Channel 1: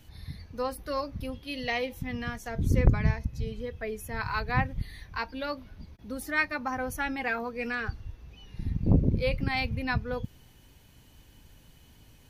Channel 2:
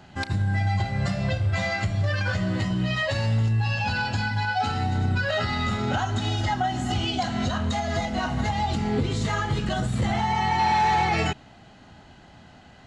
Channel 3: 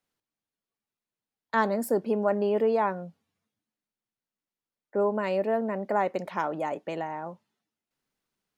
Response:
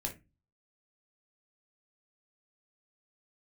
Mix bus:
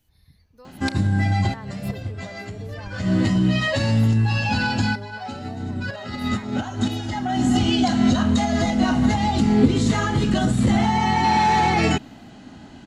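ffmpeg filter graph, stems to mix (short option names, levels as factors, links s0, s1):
-filter_complex "[0:a]volume=0.188[s0];[1:a]equalizer=f=260:w=1.5:g=11.5,adelay=650,volume=1.26[s1];[2:a]volume=0.266,asplit=2[s2][s3];[s3]apad=whole_len=596024[s4];[s1][s4]sidechaincompress=threshold=0.00355:ratio=4:attack=5.4:release=142[s5];[s0][s2]amix=inputs=2:normalize=0,acompressor=threshold=0.00398:ratio=1.5,volume=1[s6];[s5][s6]amix=inputs=2:normalize=0,highshelf=f=6500:g=8"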